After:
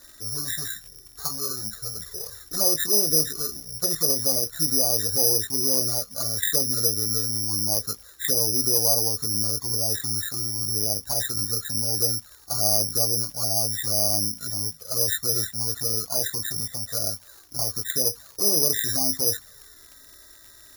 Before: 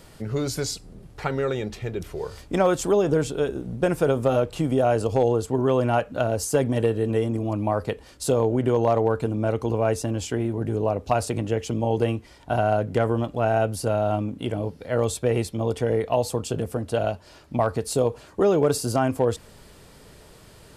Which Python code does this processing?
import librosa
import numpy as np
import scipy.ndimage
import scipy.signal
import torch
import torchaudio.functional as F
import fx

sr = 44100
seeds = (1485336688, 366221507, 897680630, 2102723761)

y = fx.freq_compress(x, sr, knee_hz=1100.0, ratio=4.0)
y = fx.dmg_crackle(y, sr, seeds[0], per_s=130.0, level_db=-35.0)
y = fx.doubler(y, sr, ms=19.0, db=-7.5)
y = fx.env_flanger(y, sr, rest_ms=3.5, full_db=-15.5)
y = (np.kron(y[::8], np.eye(8)[0]) * 8)[:len(y)]
y = y * librosa.db_to_amplitude(-9.5)